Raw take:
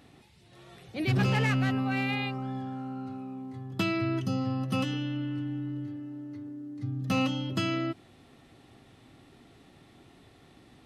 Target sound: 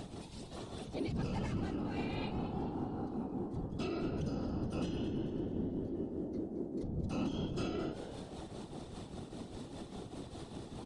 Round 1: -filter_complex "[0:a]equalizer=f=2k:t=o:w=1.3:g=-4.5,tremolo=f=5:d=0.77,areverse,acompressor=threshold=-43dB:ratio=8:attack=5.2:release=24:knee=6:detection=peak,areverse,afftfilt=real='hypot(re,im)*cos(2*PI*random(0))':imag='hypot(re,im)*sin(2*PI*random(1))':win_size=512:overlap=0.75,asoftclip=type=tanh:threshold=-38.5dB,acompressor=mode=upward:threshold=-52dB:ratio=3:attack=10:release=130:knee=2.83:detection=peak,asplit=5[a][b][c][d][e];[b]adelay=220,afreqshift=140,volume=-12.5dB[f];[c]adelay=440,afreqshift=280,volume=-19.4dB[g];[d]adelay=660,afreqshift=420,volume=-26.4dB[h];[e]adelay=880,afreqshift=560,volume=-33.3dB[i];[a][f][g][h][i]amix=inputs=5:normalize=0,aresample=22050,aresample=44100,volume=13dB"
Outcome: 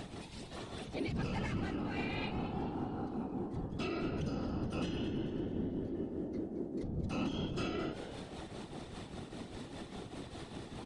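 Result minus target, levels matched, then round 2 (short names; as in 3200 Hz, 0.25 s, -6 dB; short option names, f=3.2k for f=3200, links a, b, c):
2000 Hz band +5.5 dB
-filter_complex "[0:a]equalizer=f=2k:t=o:w=1.3:g=-13,tremolo=f=5:d=0.77,areverse,acompressor=threshold=-43dB:ratio=8:attack=5.2:release=24:knee=6:detection=peak,areverse,afftfilt=real='hypot(re,im)*cos(2*PI*random(0))':imag='hypot(re,im)*sin(2*PI*random(1))':win_size=512:overlap=0.75,asoftclip=type=tanh:threshold=-38.5dB,acompressor=mode=upward:threshold=-52dB:ratio=3:attack=10:release=130:knee=2.83:detection=peak,asplit=5[a][b][c][d][e];[b]adelay=220,afreqshift=140,volume=-12.5dB[f];[c]adelay=440,afreqshift=280,volume=-19.4dB[g];[d]adelay=660,afreqshift=420,volume=-26.4dB[h];[e]adelay=880,afreqshift=560,volume=-33.3dB[i];[a][f][g][h][i]amix=inputs=5:normalize=0,aresample=22050,aresample=44100,volume=13dB"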